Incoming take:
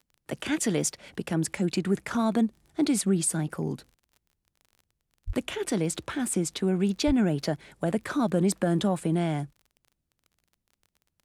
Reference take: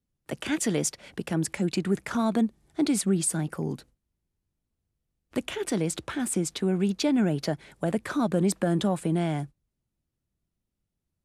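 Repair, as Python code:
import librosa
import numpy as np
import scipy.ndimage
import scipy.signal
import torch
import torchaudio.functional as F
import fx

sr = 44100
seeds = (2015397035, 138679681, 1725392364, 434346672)

y = fx.fix_declick_ar(x, sr, threshold=6.5)
y = fx.highpass(y, sr, hz=140.0, slope=24, at=(5.26, 5.38), fade=0.02)
y = fx.highpass(y, sr, hz=140.0, slope=24, at=(7.06, 7.18), fade=0.02)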